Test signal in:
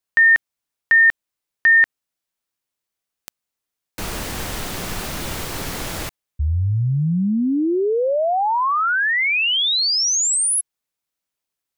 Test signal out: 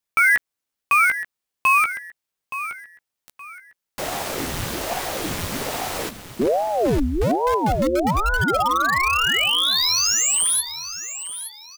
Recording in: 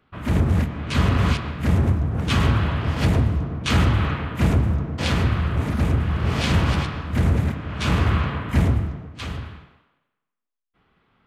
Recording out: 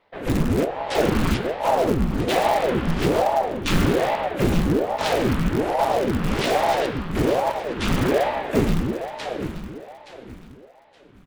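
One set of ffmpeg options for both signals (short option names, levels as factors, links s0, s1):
-filter_complex "[0:a]asplit=2[s0][s1];[s1]adelay=15,volume=0.398[s2];[s0][s2]amix=inputs=2:normalize=0,asplit=2[s3][s4];[s4]aeval=exprs='(mod(5.01*val(0)+1,2)-1)/5.01':c=same,volume=0.282[s5];[s3][s5]amix=inputs=2:normalize=0,aecho=1:1:871|1742|2613:0.251|0.0728|0.0211,aeval=exprs='val(0)*sin(2*PI*420*n/s+420*0.8/1.2*sin(2*PI*1.2*n/s))':c=same"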